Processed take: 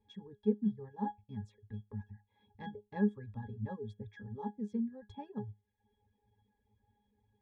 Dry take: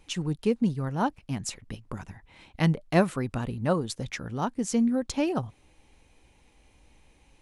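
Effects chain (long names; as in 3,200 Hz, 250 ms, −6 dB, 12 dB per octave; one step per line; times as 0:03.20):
resonances in every octave G#, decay 0.25 s
reverb reduction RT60 0.64 s
level +2.5 dB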